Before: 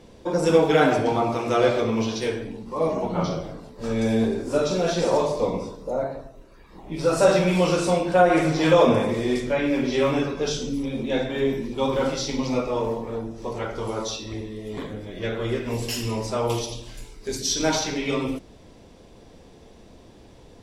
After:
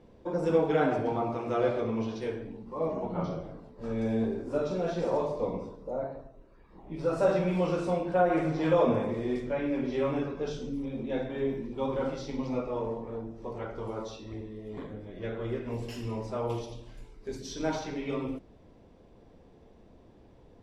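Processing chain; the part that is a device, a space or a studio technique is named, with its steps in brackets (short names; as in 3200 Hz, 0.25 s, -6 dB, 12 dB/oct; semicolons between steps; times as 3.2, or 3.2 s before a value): through cloth (high shelf 3100 Hz -16 dB); gain -7 dB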